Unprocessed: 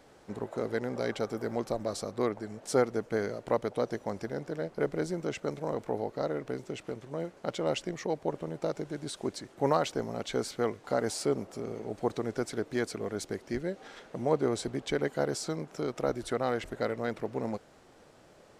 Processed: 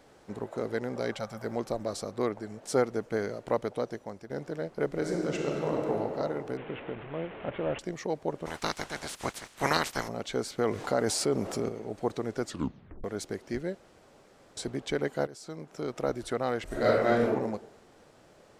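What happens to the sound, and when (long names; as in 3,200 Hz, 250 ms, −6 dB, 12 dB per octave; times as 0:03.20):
0:01.16–0:01.45: gain on a spectral selection 230–500 Hz −15 dB
0:03.66–0:04.30: fade out, to −11 dB
0:04.86–0:05.94: thrown reverb, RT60 2.9 s, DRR −1 dB
0:06.57–0:07.79: linear delta modulator 16 kbit/s, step −37.5 dBFS
0:08.45–0:10.07: ceiling on every frequency bin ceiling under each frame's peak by 26 dB
0:10.58–0:11.69: envelope flattener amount 50%
0:12.42: tape stop 0.62 s
0:13.75–0:14.57: fill with room tone
0:15.27–0:15.96: fade in, from −17 dB
0:16.66–0:17.27: thrown reverb, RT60 0.81 s, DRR −8 dB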